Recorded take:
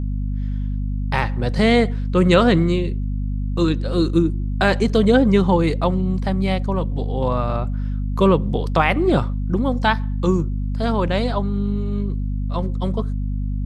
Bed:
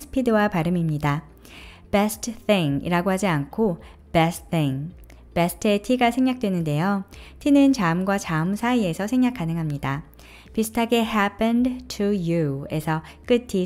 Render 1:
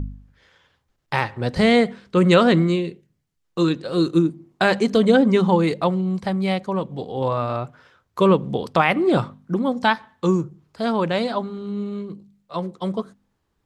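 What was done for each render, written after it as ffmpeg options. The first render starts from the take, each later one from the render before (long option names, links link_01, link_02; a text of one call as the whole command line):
ffmpeg -i in.wav -af "bandreject=frequency=50:width_type=h:width=4,bandreject=frequency=100:width_type=h:width=4,bandreject=frequency=150:width_type=h:width=4,bandreject=frequency=200:width_type=h:width=4,bandreject=frequency=250:width_type=h:width=4" out.wav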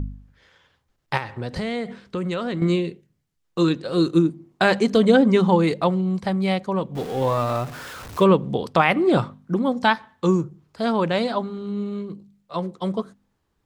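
ffmpeg -i in.wav -filter_complex "[0:a]asettb=1/sr,asplit=3[link_01][link_02][link_03];[link_01]atrim=end=1.174[link_04];[link_02]atrim=start=1.17:end=2.62,asetpts=PTS-STARTPTS,afade=type=in:duration=0.004:curve=qsin,afade=type=out:start_time=1.446:duration=0.004:curve=qsin,acompressor=threshold=-24dB:ratio=5:attack=3.2:release=140:knee=1:detection=peak[link_05];[link_03]atrim=start=2.616[link_06];[link_04][link_05]acrossfade=duration=0.004:curve1=hsin:curve2=qsin[link_07];[link_07][link_06]acrossfade=duration=0.004:curve1=qsin:curve2=hsin,asettb=1/sr,asplit=3[link_08][link_09][link_10];[link_08]atrim=end=6.954[link_11];[link_09]atrim=start=6.95:end=8.24,asetpts=PTS-STARTPTS,afade=type=in:duration=0.004:curve=qsin,afade=type=out:start_time=1.286:duration=0.004:curve=qsin,aeval=exprs='val(0)+0.5*0.0251*sgn(val(0))':channel_layout=same[link_12];[link_10]atrim=start=8.236[link_13];[link_11][link_12]acrossfade=duration=0.004:curve1=hsin:curve2=qsin[link_14];[link_14][link_13]acrossfade=duration=0.004:curve1=qsin:curve2=hsin" out.wav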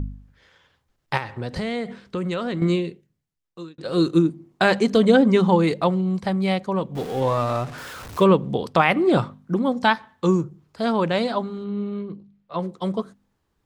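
ffmpeg -i in.wav -filter_complex "[0:a]asettb=1/sr,asplit=3[link_01][link_02][link_03];[link_01]atrim=end=7.204[link_04];[link_02]atrim=start=7.2:end=7.78,asetpts=PTS-STARTPTS,afade=type=in:duration=0.004:curve=qsin,afade=type=out:start_time=0.576:duration=0.004:curve=qsin,adynamicsmooth=sensitivity=7.5:basefreq=7700[link_05];[link_03]atrim=start=7.776[link_06];[link_04][link_05]acrossfade=duration=0.004:curve1=hsin:curve2=qsin[link_07];[link_07][link_06]acrossfade=duration=0.004:curve1=qsin:curve2=hsin,asettb=1/sr,asplit=3[link_08][link_09][link_10];[link_08]atrim=end=11.644[link_11];[link_09]atrim=start=11.64:end=12.6,asetpts=PTS-STARTPTS,afade=type=in:duration=0.004:curve=qsin,afade=type=out:start_time=0.956:duration=0.004:curve=qsin,lowpass=3300[link_12];[link_10]atrim=start=12.596[link_13];[link_11][link_12]acrossfade=duration=0.004:curve1=hsin:curve2=qsin[link_14];[link_14][link_13]acrossfade=duration=0.004:curve1=qsin:curve2=hsin,asplit=2[link_15][link_16];[link_15]atrim=end=3.78,asetpts=PTS-STARTPTS,afade=type=out:start_time=2.68:duration=1.1[link_17];[link_16]atrim=start=3.78,asetpts=PTS-STARTPTS,afade=type=in:duration=0.004:curve=hsin[link_18];[link_17][link_18]concat=n=2:v=0:a=1" out.wav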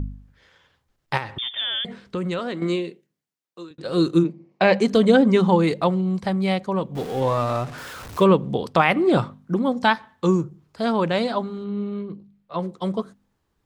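ffmpeg -i in.wav -filter_complex "[0:a]asettb=1/sr,asplit=3[link_01][link_02][link_03];[link_01]atrim=end=1.384[link_04];[link_02]atrim=start=1.38:end=1.85,asetpts=PTS-STARTPTS,afade=type=in:duration=0.004:curve=qsin,afade=type=out:start_time=0.466:duration=0.004:curve=qsin,lowpass=frequency=3100:width_type=q:width=0.5098,lowpass=frequency=3100:width_type=q:width=0.6013,lowpass=frequency=3100:width_type=q:width=0.9,lowpass=frequency=3100:width_type=q:width=2.563,afreqshift=-3700[link_05];[link_03]atrim=start=1.846[link_06];[link_04][link_05]acrossfade=duration=0.004:curve1=hsin:curve2=qsin[link_07];[link_07][link_06]acrossfade=duration=0.004:curve1=qsin:curve2=hsin,asettb=1/sr,asplit=3[link_08][link_09][link_10];[link_08]atrim=end=2.394[link_11];[link_09]atrim=start=2.39:end=3.71,asetpts=PTS-STARTPTS,afade=type=in:duration=0.004:curve=qsin,afade=type=out:start_time=1.316:duration=0.004:curve=qsin,highpass=250[link_12];[link_10]atrim=start=3.706[link_13];[link_11][link_12]acrossfade=duration=0.004:curve1=hsin:curve2=qsin[link_14];[link_14][link_13]acrossfade=duration=0.004:curve1=qsin:curve2=hsin,asplit=3[link_15][link_16][link_17];[link_15]afade=type=out:start_time=4.23:duration=0.02[link_18];[link_16]highpass=180,equalizer=frequency=190:width_type=q:width=4:gain=5,equalizer=frequency=280:width_type=q:width=4:gain=-9,equalizer=frequency=540:width_type=q:width=4:gain=7,equalizer=frequency=1400:width_type=q:width=4:gain=-8,equalizer=frequency=2300:width_type=q:width=4:gain=7,equalizer=frequency=3500:width_type=q:width=4:gain=-7,lowpass=frequency=5300:width=0.5412,lowpass=frequency=5300:width=1.3066,afade=type=in:start_time=4.23:duration=0.02,afade=type=out:start_time=4.78:duration=0.02[link_19];[link_17]afade=type=in:start_time=4.78:duration=0.02[link_20];[link_18][link_19][link_20]amix=inputs=3:normalize=0" out.wav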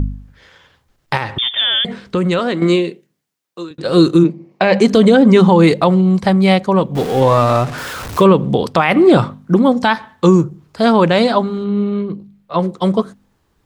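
ffmpeg -i in.wav -af "alimiter=level_in=10.5dB:limit=-1dB:release=50:level=0:latency=1" out.wav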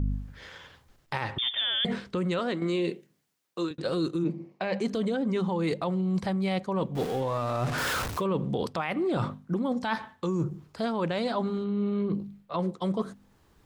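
ffmpeg -i in.wav -af "alimiter=limit=-9.5dB:level=0:latency=1:release=441,areverse,acompressor=threshold=-26dB:ratio=6,areverse" out.wav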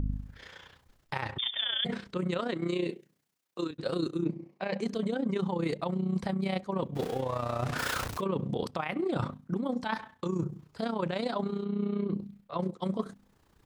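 ffmpeg -i in.wav -af "tremolo=f=30:d=0.71" out.wav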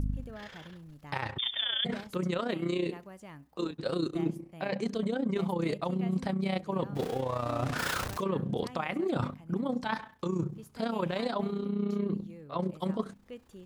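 ffmpeg -i in.wav -i bed.wav -filter_complex "[1:a]volume=-26.5dB[link_01];[0:a][link_01]amix=inputs=2:normalize=0" out.wav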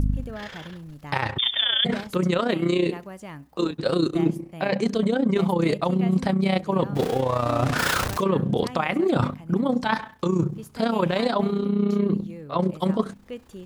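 ffmpeg -i in.wav -af "volume=9dB" out.wav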